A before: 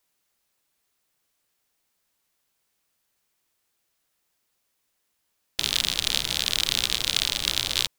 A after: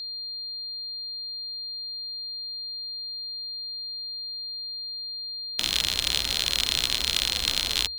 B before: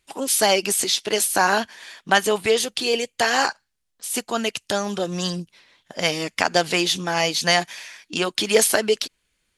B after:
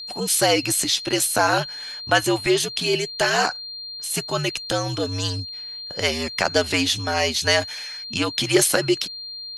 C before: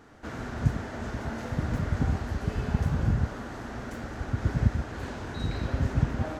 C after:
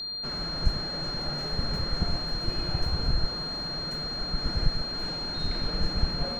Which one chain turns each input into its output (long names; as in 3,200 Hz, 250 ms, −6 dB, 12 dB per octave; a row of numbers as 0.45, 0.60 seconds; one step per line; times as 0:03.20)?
soft clipping −2.5 dBFS
frequency shifter −77 Hz
steady tone 4,200 Hz −32 dBFS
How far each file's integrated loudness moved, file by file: −4.0, −0.5, +1.0 LU